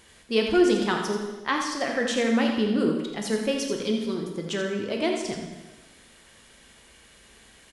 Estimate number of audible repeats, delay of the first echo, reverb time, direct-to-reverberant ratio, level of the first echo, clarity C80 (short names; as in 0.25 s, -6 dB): 1, 84 ms, 1.2 s, 1.0 dB, -8.0 dB, 4.5 dB